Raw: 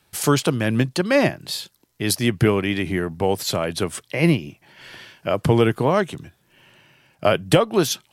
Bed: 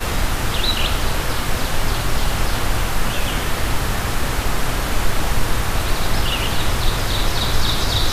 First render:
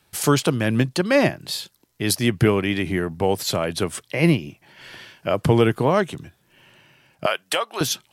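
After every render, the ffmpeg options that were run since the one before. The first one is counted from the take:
ffmpeg -i in.wav -filter_complex "[0:a]asettb=1/sr,asplit=3[link_01][link_02][link_03];[link_01]atrim=end=7.264[link_04];[link_02]atrim=start=7.26:end=7.81,asetpts=PTS-STARTPTS,afade=type=in:duration=0.004:curve=qsin,afade=type=out:start_time=0.546:duration=0.004:curve=qsin,highpass=900[link_05];[link_03]atrim=start=7.806[link_06];[link_04][link_05]acrossfade=duration=0.004:curve1=hsin:curve2=qsin[link_07];[link_07][link_06]acrossfade=duration=0.004:curve1=qsin:curve2=hsin" out.wav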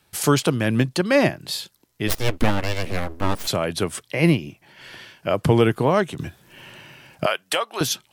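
ffmpeg -i in.wav -filter_complex "[0:a]asplit=3[link_01][link_02][link_03];[link_01]afade=type=out:start_time=2.07:duration=0.02[link_04];[link_02]aeval=exprs='abs(val(0))':channel_layout=same,afade=type=in:start_time=2.07:duration=0.02,afade=type=out:start_time=3.46:duration=0.02[link_05];[link_03]afade=type=in:start_time=3.46:duration=0.02[link_06];[link_04][link_05][link_06]amix=inputs=3:normalize=0,asplit=3[link_07][link_08][link_09];[link_07]atrim=end=6.192[link_10];[link_08]atrim=start=6.188:end=7.252,asetpts=PTS-STARTPTS,volume=9.5dB[link_11];[link_09]atrim=start=7.248[link_12];[link_10][link_11]acrossfade=duration=0.004:curve1=hsin:curve2=hsin[link_13];[link_13][link_12]acrossfade=duration=0.004:curve1=hsin:curve2=hsin" out.wav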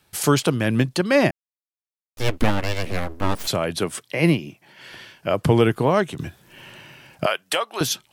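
ffmpeg -i in.wav -filter_complex "[0:a]asettb=1/sr,asplit=3[link_01][link_02][link_03];[link_01]atrim=end=3.774[link_04];[link_02]atrim=start=3.77:end=4.92,asetpts=PTS-STARTPTS,afade=type=in:duration=0.004:curve=qsin,afade=type=out:start_time=1.146:duration=0.004:curve=qsin,highpass=120[link_05];[link_03]atrim=start=4.916[link_06];[link_04][link_05]acrossfade=duration=0.004:curve1=hsin:curve2=qsin[link_07];[link_07][link_06]acrossfade=duration=0.004:curve1=qsin:curve2=hsin,asplit=3[link_08][link_09][link_10];[link_08]atrim=end=1.31,asetpts=PTS-STARTPTS,afade=type=out:start_time=1.306:duration=0.004:curve=hsin[link_11];[link_09]atrim=start=1.31:end=2.17,asetpts=PTS-STARTPTS,volume=0[link_12];[link_10]atrim=start=2.17,asetpts=PTS-STARTPTS,afade=type=in:duration=0.004:curve=hsin[link_13];[link_11][link_12][link_13]concat=n=3:v=0:a=1" out.wav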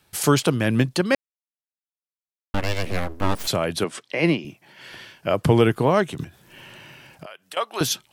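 ffmpeg -i in.wav -filter_complex "[0:a]asettb=1/sr,asplit=3[link_01][link_02][link_03];[link_01]atrim=end=3.844[link_04];[link_02]atrim=start=3.84:end=4.45,asetpts=PTS-STARTPTS,afade=type=in:duration=0.004:curve=qsin,afade=type=out:start_time=0.606:duration=0.004:curve=qsin,highpass=200,lowpass=6400[link_05];[link_03]atrim=start=4.446[link_06];[link_04][link_05]acrossfade=duration=0.004:curve1=hsin:curve2=qsin[link_07];[link_07][link_06]acrossfade=duration=0.004:curve1=qsin:curve2=hsin,asettb=1/sr,asplit=3[link_08][link_09][link_10];[link_08]atrim=end=6.244[link_11];[link_09]atrim=start=6.24:end=7.57,asetpts=PTS-STARTPTS,afade=type=in:duration=0.004:curve=qsin,afade=type=out:start_time=1.326:duration=0.004:curve=qsin,acompressor=threshold=-39dB:ratio=4:attack=3.2:release=140:knee=1:detection=peak[link_12];[link_10]atrim=start=7.566[link_13];[link_11][link_12]acrossfade=duration=0.004:curve1=hsin:curve2=qsin[link_14];[link_14][link_13]acrossfade=duration=0.004:curve1=qsin:curve2=hsin,asplit=3[link_15][link_16][link_17];[link_15]atrim=end=1.15,asetpts=PTS-STARTPTS,afade=type=out:start_time=1.146:duration=0.004:curve=hsin[link_18];[link_16]atrim=start=1.15:end=2.54,asetpts=PTS-STARTPTS,volume=0[link_19];[link_17]atrim=start=2.54,asetpts=PTS-STARTPTS,afade=type=in:duration=0.004:curve=hsin[link_20];[link_18][link_19][link_20]concat=n=3:v=0:a=1" out.wav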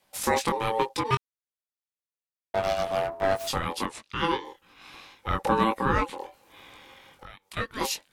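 ffmpeg -i in.wav -af "flanger=delay=19:depth=3.7:speed=1.2,aeval=exprs='val(0)*sin(2*PI*670*n/s)':channel_layout=same" out.wav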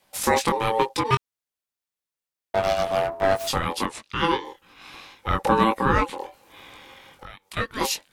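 ffmpeg -i in.wav -af "volume=4dB" out.wav

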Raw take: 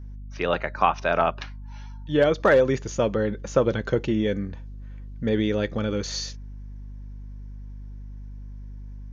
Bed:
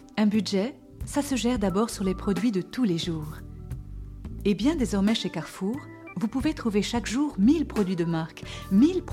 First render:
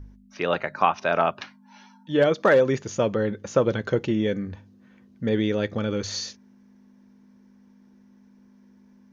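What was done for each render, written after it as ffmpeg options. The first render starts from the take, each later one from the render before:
ffmpeg -i in.wav -af "bandreject=frequency=50:width_type=h:width=4,bandreject=frequency=100:width_type=h:width=4,bandreject=frequency=150:width_type=h:width=4" out.wav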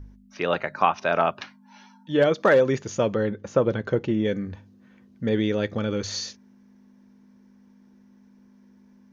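ffmpeg -i in.wav -filter_complex "[0:a]asettb=1/sr,asplit=3[link_01][link_02][link_03];[link_01]atrim=end=3.294[link_04];[link_02]atrim=start=3.29:end=4.25,asetpts=PTS-STARTPTS,afade=type=in:duration=0.004:curve=qsin,afade=type=out:start_time=0.956:duration=0.004:curve=qsin,highshelf=frequency=2800:gain=-8.5[link_05];[link_03]atrim=start=4.246[link_06];[link_04][link_05]acrossfade=duration=0.004:curve1=hsin:curve2=qsin[link_07];[link_07][link_06]acrossfade=duration=0.004:curve1=qsin:curve2=hsin" out.wav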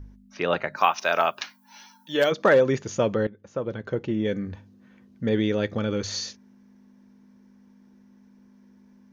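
ffmpeg -i in.wav -filter_complex "[0:a]asplit=3[link_01][link_02][link_03];[link_01]afade=type=out:start_time=0.76:duration=0.02[link_04];[link_02]aemphasis=mode=production:type=riaa,afade=type=in:start_time=0.76:duration=0.02,afade=type=out:start_time=2.31:duration=0.02[link_05];[link_03]afade=type=in:start_time=2.31:duration=0.02[link_06];[link_04][link_05][link_06]amix=inputs=3:normalize=0,asplit=2[link_07][link_08];[link_07]atrim=end=3.27,asetpts=PTS-STARTPTS,afade=type=out:start_time=3.266:duration=0.004:curve=hsin:silence=0.125893[link_09];[link_08]atrim=start=3.27,asetpts=PTS-STARTPTS,afade=type=in:duration=1.21:silence=0.125893[link_10];[link_09][link_10]concat=n=2:v=0:a=1" out.wav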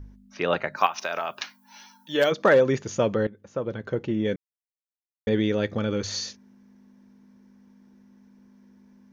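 ffmpeg -i in.wav -filter_complex "[0:a]asettb=1/sr,asplit=3[link_01][link_02][link_03];[link_01]atrim=end=0.864[link_04];[link_02]atrim=start=0.86:end=1.3,asetpts=PTS-STARTPTS,afade=type=in:duration=0.004:curve=qsin,afade=type=out:start_time=0.436:duration=0.004:curve=qsin,acompressor=threshold=-24dB:ratio=6:attack=3.2:release=140:knee=1:detection=peak[link_05];[link_03]atrim=start=1.296[link_06];[link_04][link_05]acrossfade=duration=0.004:curve1=hsin:curve2=qsin[link_07];[link_07][link_06]acrossfade=duration=0.004:curve1=qsin:curve2=hsin,asplit=3[link_08][link_09][link_10];[link_08]atrim=end=4.36,asetpts=PTS-STARTPTS,afade=type=out:start_time=4.356:duration=0.004:curve=hsin[link_11];[link_09]atrim=start=4.36:end=5.27,asetpts=PTS-STARTPTS,volume=0[link_12];[link_10]atrim=start=5.27,asetpts=PTS-STARTPTS,afade=type=in:duration=0.004:curve=hsin[link_13];[link_11][link_12][link_13]concat=n=3:v=0:a=1" out.wav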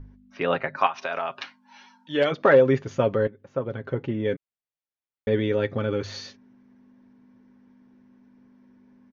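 ffmpeg -i in.wav -af "lowpass=3100,aecho=1:1:7.4:0.47" out.wav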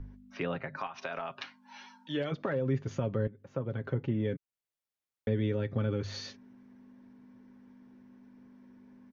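ffmpeg -i in.wav -filter_complex "[0:a]alimiter=limit=-13dB:level=0:latency=1:release=97,acrossover=split=220[link_01][link_02];[link_02]acompressor=threshold=-39dB:ratio=2.5[link_03];[link_01][link_03]amix=inputs=2:normalize=0" out.wav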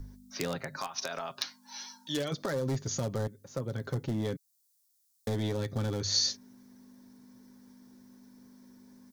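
ffmpeg -i in.wav -af "asoftclip=type=hard:threshold=-26dB,aexciter=amount=7.3:drive=6.9:freq=4000" out.wav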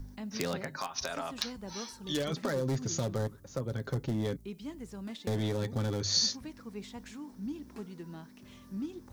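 ffmpeg -i in.wav -i bed.wav -filter_complex "[1:a]volume=-18.5dB[link_01];[0:a][link_01]amix=inputs=2:normalize=0" out.wav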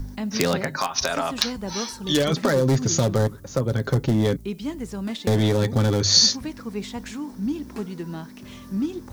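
ffmpeg -i in.wav -af "volume=12dB" out.wav

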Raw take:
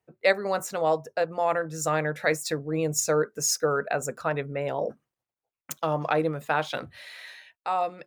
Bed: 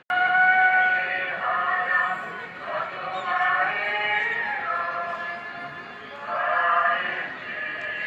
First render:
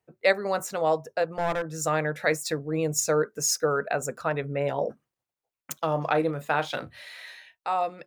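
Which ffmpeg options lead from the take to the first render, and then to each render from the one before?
ffmpeg -i in.wav -filter_complex "[0:a]asettb=1/sr,asplit=3[link_01][link_02][link_03];[link_01]atrim=end=1.274[link_04];[link_02]atrim=start=1.27:end=1.78,asetpts=PTS-STARTPTS,afade=type=in:duration=0.004:curve=qsin,afade=type=out:start_time=0.506:duration=0.004:curve=qsin,aeval=exprs='clip(val(0),-1,0.0422)':channel_layout=same[link_05];[link_03]atrim=start=1.776[link_06];[link_04][link_05]acrossfade=duration=0.004:curve1=hsin:curve2=qsin[link_07];[link_07][link_06]acrossfade=duration=0.004:curve1=qsin:curve2=hsin,asettb=1/sr,asplit=3[link_08][link_09][link_10];[link_08]atrim=end=4.424[link_11];[link_09]atrim=start=4.42:end=4.84,asetpts=PTS-STARTPTS,afade=type=in:duration=0.004:curve=qsin,afade=type=out:start_time=0.416:duration=0.004:curve=qsin,asplit=2[link_12][link_13];[link_13]adelay=14,volume=-6.5dB[link_14];[link_12][link_14]amix=inputs=2:normalize=0,atrim=end_sample=18522[link_15];[link_10]atrim=start=4.836[link_16];[link_11][link_15]acrossfade=duration=0.004:curve1=hsin:curve2=qsin[link_17];[link_17][link_16]acrossfade=duration=0.004:curve1=qsin:curve2=hsin,asettb=1/sr,asplit=3[link_18][link_19][link_20];[link_18]atrim=end=5.874[link_21];[link_19]atrim=start=5.87:end=7.74,asetpts=PTS-STARTPTS,afade=type=in:duration=0.004:curve=qsin,afade=type=out:start_time=1.866:duration=0.004:curve=qsin,asplit=2[link_22][link_23];[link_23]adelay=35,volume=-13dB[link_24];[link_22][link_24]amix=inputs=2:normalize=0,atrim=end_sample=82467[link_25];[link_20]atrim=start=7.736[link_26];[link_21][link_25]acrossfade=duration=0.004:curve1=hsin:curve2=qsin[link_27];[link_27][link_26]acrossfade=duration=0.004:curve1=qsin:curve2=hsin" out.wav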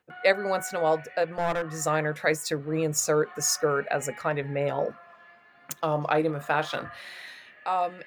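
ffmpeg -i in.wav -i bed.wav -filter_complex "[1:a]volume=-21.5dB[link_01];[0:a][link_01]amix=inputs=2:normalize=0" out.wav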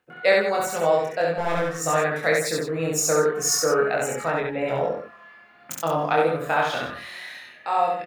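ffmpeg -i in.wav -filter_complex "[0:a]asplit=2[link_01][link_02];[link_02]adelay=24,volume=-2dB[link_03];[link_01][link_03]amix=inputs=2:normalize=0,aecho=1:1:67.06|160.3:0.794|0.282" out.wav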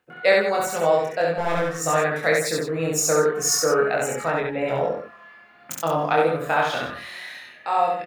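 ffmpeg -i in.wav -af "volume=1dB" out.wav

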